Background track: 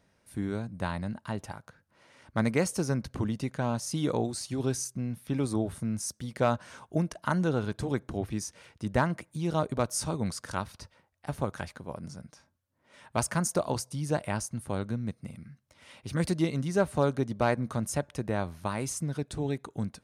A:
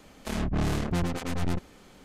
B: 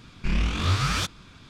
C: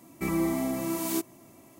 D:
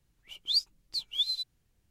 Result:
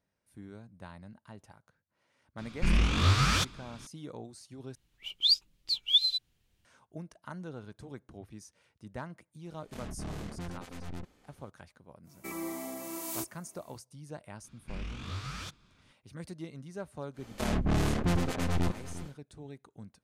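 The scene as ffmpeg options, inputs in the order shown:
ffmpeg -i bed.wav -i cue0.wav -i cue1.wav -i cue2.wav -i cue3.wav -filter_complex "[2:a]asplit=2[link_01][link_02];[1:a]asplit=2[link_03][link_04];[0:a]volume=-15dB[link_05];[4:a]equalizer=frequency=3100:width_type=o:width=1.1:gain=7.5[link_06];[3:a]bass=frequency=250:gain=-13,treble=frequency=4000:gain=4[link_07];[link_04]aecho=1:1:352:0.2[link_08];[link_05]asplit=2[link_09][link_10];[link_09]atrim=end=4.754[link_11];[link_06]atrim=end=1.9,asetpts=PTS-STARTPTS,volume=-1.5dB[link_12];[link_10]atrim=start=6.646[link_13];[link_01]atrim=end=1.49,asetpts=PTS-STARTPTS,volume=-1dB,afade=type=in:duration=0.004:curve=hsin,afade=type=out:start_time=1.486:duration=0.004:curve=hsin,adelay=2380[link_14];[link_03]atrim=end=2.04,asetpts=PTS-STARTPTS,volume=-13dB,afade=type=in:duration=0.004:curve=hsin,afade=type=out:start_time=2.036:duration=0.004:curve=hsin,adelay=417186S[link_15];[link_07]atrim=end=1.79,asetpts=PTS-STARTPTS,volume=-7.5dB,afade=type=in:duration=0.1,afade=type=out:start_time=1.69:duration=0.1,adelay=12030[link_16];[link_02]atrim=end=1.49,asetpts=PTS-STARTPTS,volume=-15.5dB,afade=type=in:duration=0.004:curve=hsin,afade=type=out:start_time=1.486:duration=0.004:curve=hsin,adelay=636804S[link_17];[link_08]atrim=end=2.04,asetpts=PTS-STARTPTS,volume=-0.5dB,afade=type=in:duration=0.1,afade=type=out:start_time=1.94:duration=0.1,adelay=17130[link_18];[link_11][link_12]acrossfade=duration=0.004:curve1=hsin:curve2=hsin[link_19];[link_19][link_13]acrossfade=duration=0.004:curve1=hsin:curve2=hsin[link_20];[link_20][link_14][link_15][link_16][link_17][link_18]amix=inputs=6:normalize=0" out.wav

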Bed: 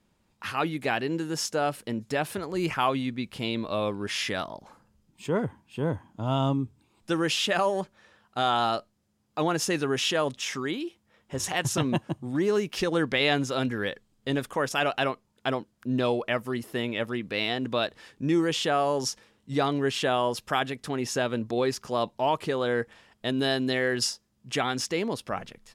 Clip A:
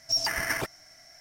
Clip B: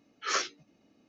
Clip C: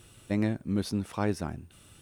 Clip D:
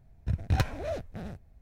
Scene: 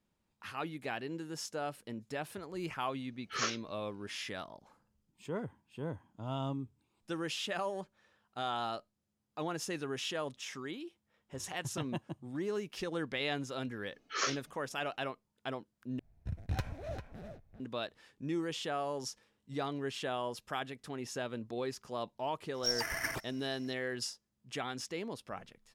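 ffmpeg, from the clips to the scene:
ffmpeg -i bed.wav -i cue0.wav -i cue1.wav -i cue2.wav -i cue3.wav -filter_complex "[2:a]asplit=2[link_01][link_02];[0:a]volume=-11.5dB[link_03];[4:a]asplit=2[link_04][link_05];[link_05]adelay=396.5,volume=-8dB,highshelf=frequency=4000:gain=-8.92[link_06];[link_04][link_06]amix=inputs=2:normalize=0[link_07];[1:a]aphaser=in_gain=1:out_gain=1:delay=3.3:decay=0.33:speed=1.8:type=triangular[link_08];[link_03]asplit=2[link_09][link_10];[link_09]atrim=end=15.994[link_11];[link_07]atrim=end=1.61,asetpts=PTS-STARTPTS,volume=-9.5dB[link_12];[link_10]atrim=start=17.596[link_13];[link_01]atrim=end=1.08,asetpts=PTS-STARTPTS,volume=-5dB,afade=type=in:duration=0.004:curve=hsin,afade=type=out:start_time=1.076:duration=0.004:curve=hsin,adelay=3080[link_14];[link_02]atrim=end=1.08,asetpts=PTS-STARTPTS,volume=-4dB,afade=type=in:duration=0.004:curve=hsin,afade=type=out:start_time=1.076:duration=0.004:curve=hsin,adelay=13880[link_15];[link_08]atrim=end=1.2,asetpts=PTS-STARTPTS,volume=-8dB,afade=type=in:duration=0.004:curve=hsin,afade=type=out:start_time=1.196:duration=0.004:curve=hsin,adelay=22540[link_16];[link_11][link_12]acrossfade=duration=0.004:curve1=hsin:curve2=hsin[link_17];[link_17][link_13]acrossfade=duration=0.004:curve1=hsin:curve2=hsin[link_18];[link_18][link_14][link_15][link_16]amix=inputs=4:normalize=0" out.wav

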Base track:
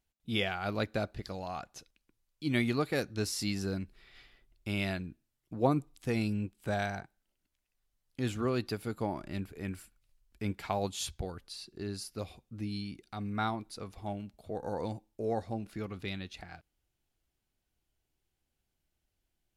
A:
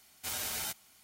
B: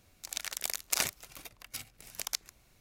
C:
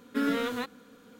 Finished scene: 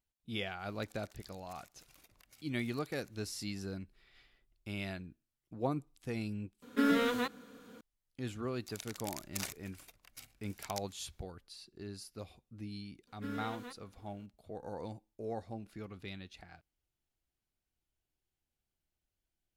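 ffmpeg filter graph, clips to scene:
ffmpeg -i bed.wav -i cue0.wav -i cue1.wav -i cue2.wav -filter_complex "[2:a]asplit=2[link_01][link_02];[3:a]asplit=2[link_03][link_04];[0:a]volume=-7dB[link_05];[link_01]acompressor=threshold=-53dB:ratio=6:attack=3.2:release=140:knee=1:detection=peak[link_06];[link_05]asplit=2[link_07][link_08];[link_07]atrim=end=6.624[link_09];[link_03]atrim=end=1.19,asetpts=PTS-STARTPTS,volume=-0.5dB[link_10];[link_08]atrim=start=7.806[link_11];[link_06]atrim=end=2.8,asetpts=PTS-STARTPTS,volume=-5.5dB,afade=type=in:duration=0.004:curve=hsin,afade=type=out:start_time=2.796:duration=0.004:curve=hsin,adelay=590[link_12];[link_02]atrim=end=2.8,asetpts=PTS-STARTPTS,volume=-10.5dB,afade=type=in:duration=0.004:curve=hsin,afade=type=out:start_time=2.796:duration=0.004:curve=hsin,adelay=8430[link_13];[link_04]atrim=end=1.19,asetpts=PTS-STARTPTS,volume=-14.5dB,afade=type=in:duration=0.004:curve=hsin,afade=type=out:start_time=1.186:duration=0.004:curve=hsin,adelay=13070[link_14];[link_09][link_10]acrossfade=duration=0.004:curve1=hsin:curve2=hsin[link_15];[link_15][link_11]acrossfade=duration=0.004:curve1=hsin:curve2=hsin[link_16];[link_16][link_12][link_13][link_14]amix=inputs=4:normalize=0" out.wav

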